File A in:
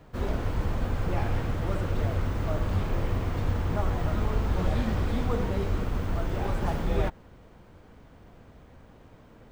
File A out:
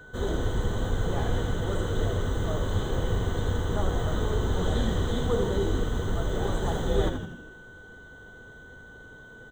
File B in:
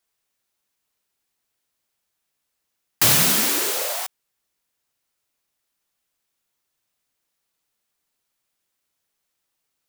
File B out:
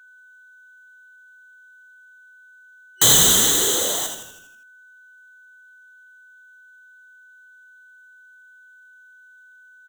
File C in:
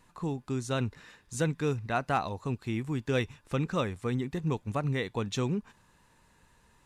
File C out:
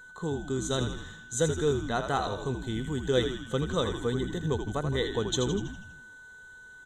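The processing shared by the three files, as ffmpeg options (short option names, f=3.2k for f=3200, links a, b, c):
-filter_complex "[0:a]superequalizer=7b=2:12b=0.316:13b=2.51:14b=0.447:15b=2.82,asplit=2[a][b];[b]asplit=7[c][d][e][f][g][h][i];[c]adelay=81,afreqshift=-70,volume=-7dB[j];[d]adelay=162,afreqshift=-140,volume=-12.4dB[k];[e]adelay=243,afreqshift=-210,volume=-17.7dB[l];[f]adelay=324,afreqshift=-280,volume=-23.1dB[m];[g]adelay=405,afreqshift=-350,volume=-28.4dB[n];[h]adelay=486,afreqshift=-420,volume=-33.8dB[o];[i]adelay=567,afreqshift=-490,volume=-39.1dB[p];[j][k][l][m][n][o][p]amix=inputs=7:normalize=0[q];[a][q]amix=inputs=2:normalize=0,aeval=exprs='val(0)+0.00501*sin(2*PI*1500*n/s)':c=same,volume=-1dB"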